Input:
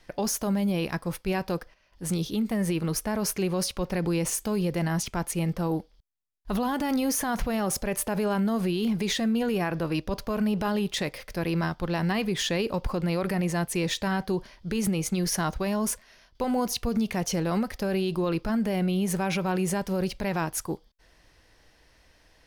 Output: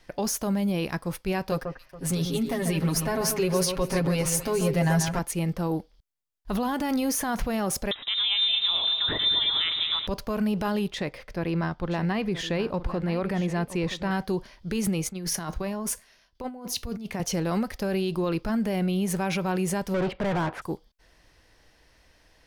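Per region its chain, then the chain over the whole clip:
1.51–5.19 s: comb 7.4 ms, depth 96% + echo whose repeats swap between lows and highs 140 ms, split 2 kHz, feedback 52%, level -6 dB
7.91–10.07 s: frequency inversion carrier 3.8 kHz + multi-head delay 111 ms, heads first and second, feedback 67%, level -13 dB
10.88–14.11 s: low-pass 2.5 kHz 6 dB/octave + delay 975 ms -13.5 dB
15.09–17.20 s: feedback comb 83 Hz, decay 0.28 s, mix 40% + compressor with a negative ratio -31 dBFS, ratio -0.5 + three bands expanded up and down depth 40%
19.94–20.62 s: distance through air 450 m + overdrive pedal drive 32 dB, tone 1.6 kHz, clips at -19 dBFS + upward expansion, over -41 dBFS
whole clip: none

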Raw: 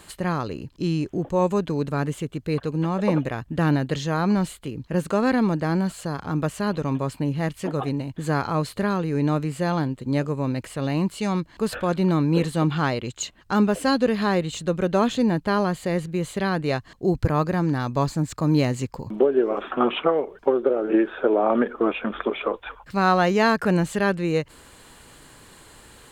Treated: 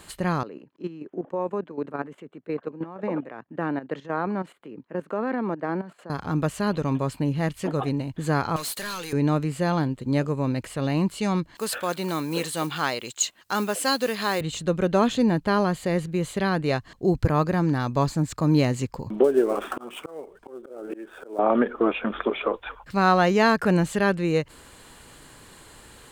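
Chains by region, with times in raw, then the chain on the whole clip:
0.43–6.10 s: three-band isolator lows -17 dB, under 200 Hz, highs -20 dB, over 2.3 kHz + level held to a coarse grid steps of 13 dB + high-pass 150 Hz
8.56–9.13 s: differentiator + waveshaping leveller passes 5
11.55–14.41 s: block-companded coder 7-bit + high-pass 610 Hz 6 dB/octave + treble shelf 5.1 kHz +10.5 dB
19.24–21.39 s: dead-time distortion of 0.055 ms + peaking EQ 8.6 kHz +7.5 dB 0.31 oct + slow attack 604 ms
whole clip: none

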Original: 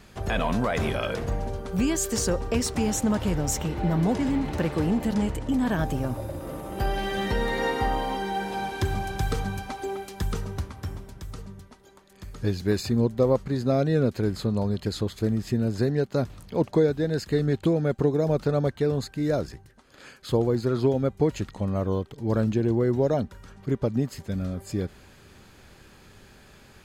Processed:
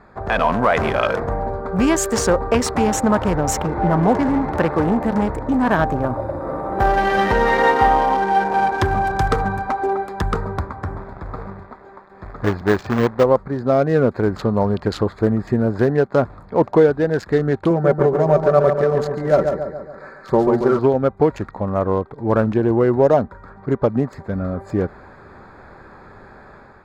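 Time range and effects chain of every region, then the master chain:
10.98–13.24 s: companded quantiser 4-bit + peaking EQ 12 kHz -13 dB 1.5 oct
17.70–20.79 s: Butterworth band-stop 3 kHz, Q 2 + comb 5.2 ms, depth 63% + feedback delay 140 ms, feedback 53%, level -6 dB
whole clip: local Wiener filter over 15 samples; peaking EQ 1.1 kHz +12.5 dB 2.8 oct; level rider gain up to 6 dB; trim -1 dB

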